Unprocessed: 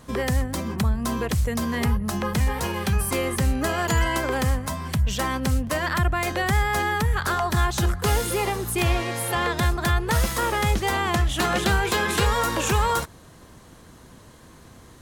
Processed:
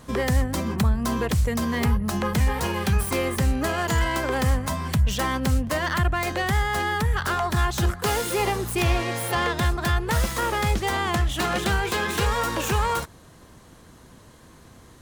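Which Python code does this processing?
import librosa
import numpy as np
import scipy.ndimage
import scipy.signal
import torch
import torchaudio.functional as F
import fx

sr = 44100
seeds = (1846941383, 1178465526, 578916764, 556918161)

y = fx.self_delay(x, sr, depth_ms=0.064)
y = fx.highpass(y, sr, hz=200.0, slope=6, at=(7.9, 8.39))
y = fx.rider(y, sr, range_db=10, speed_s=0.5)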